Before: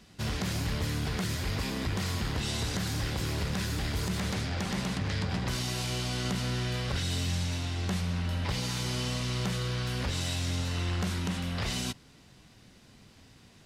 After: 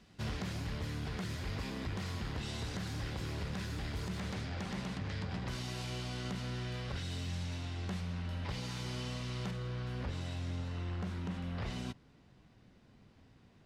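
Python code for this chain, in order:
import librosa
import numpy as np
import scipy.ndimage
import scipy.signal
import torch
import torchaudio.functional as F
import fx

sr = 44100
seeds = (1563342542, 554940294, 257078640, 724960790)

y = fx.lowpass(x, sr, hz=fx.steps((0.0, 4000.0), (9.51, 1400.0)), slope=6)
y = fx.rider(y, sr, range_db=10, speed_s=0.5)
y = y * 10.0 ** (-7.0 / 20.0)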